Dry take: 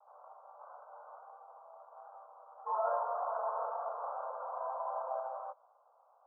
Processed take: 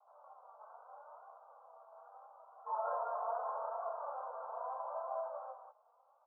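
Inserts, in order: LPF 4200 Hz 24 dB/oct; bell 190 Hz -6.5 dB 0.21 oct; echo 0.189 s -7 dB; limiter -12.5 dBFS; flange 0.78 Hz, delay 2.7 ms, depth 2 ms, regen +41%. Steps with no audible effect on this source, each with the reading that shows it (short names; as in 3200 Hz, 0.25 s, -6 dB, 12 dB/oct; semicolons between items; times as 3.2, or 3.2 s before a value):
LPF 4200 Hz: input band ends at 1600 Hz; bell 190 Hz: input band starts at 400 Hz; limiter -12.5 dBFS: input peak -22.5 dBFS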